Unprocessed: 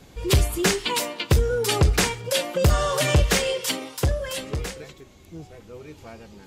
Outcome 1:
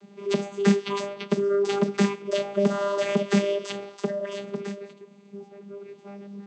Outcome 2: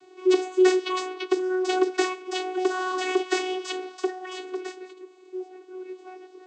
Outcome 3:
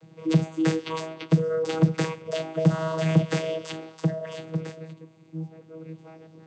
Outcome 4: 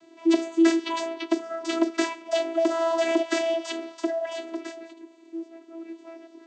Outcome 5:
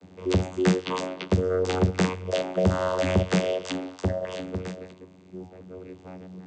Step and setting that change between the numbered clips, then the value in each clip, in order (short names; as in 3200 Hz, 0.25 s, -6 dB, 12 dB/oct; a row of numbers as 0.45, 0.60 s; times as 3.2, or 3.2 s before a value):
vocoder, frequency: 200, 370, 160, 330, 92 Hz